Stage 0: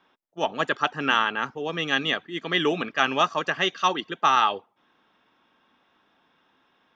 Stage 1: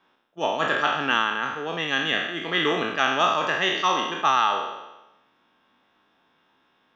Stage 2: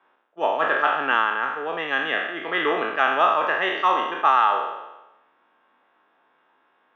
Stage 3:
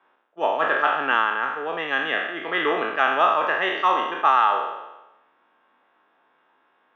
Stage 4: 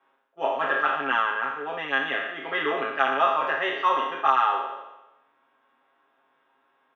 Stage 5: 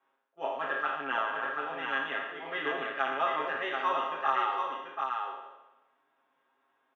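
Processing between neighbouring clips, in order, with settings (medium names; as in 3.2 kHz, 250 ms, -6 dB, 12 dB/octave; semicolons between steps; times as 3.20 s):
spectral sustain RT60 1.01 s; trim -2.5 dB
three-band isolator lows -16 dB, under 340 Hz, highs -23 dB, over 2.5 kHz; trim +3.5 dB
no audible change
comb 7.4 ms, depth 96%; trim -6 dB
delay 736 ms -4.5 dB; trim -8 dB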